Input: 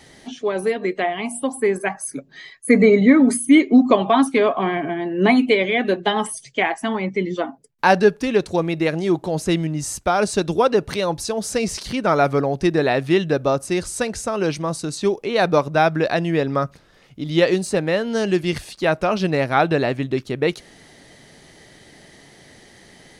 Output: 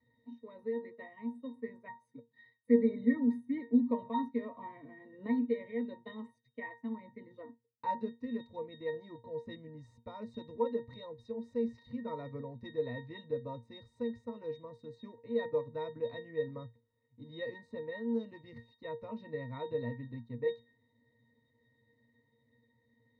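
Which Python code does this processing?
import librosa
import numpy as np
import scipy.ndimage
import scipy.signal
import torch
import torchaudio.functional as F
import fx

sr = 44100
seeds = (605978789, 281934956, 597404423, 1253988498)

y = fx.law_mismatch(x, sr, coded='A')
y = fx.high_shelf(y, sr, hz=9900.0, db=-11.5)
y = fx.octave_resonator(y, sr, note='A#', decay_s=0.21)
y = y * 10.0 ** (-5.0 / 20.0)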